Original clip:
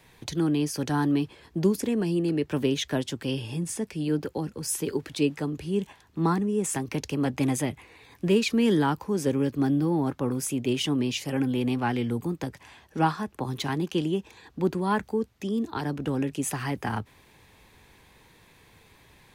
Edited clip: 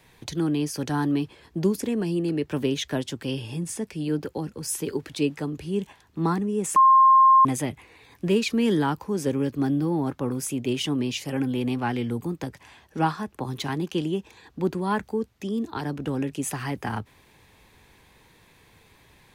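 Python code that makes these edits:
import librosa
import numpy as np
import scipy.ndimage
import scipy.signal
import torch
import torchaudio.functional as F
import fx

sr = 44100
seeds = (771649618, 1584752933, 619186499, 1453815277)

y = fx.edit(x, sr, fx.bleep(start_s=6.76, length_s=0.69, hz=1060.0, db=-11.5), tone=tone)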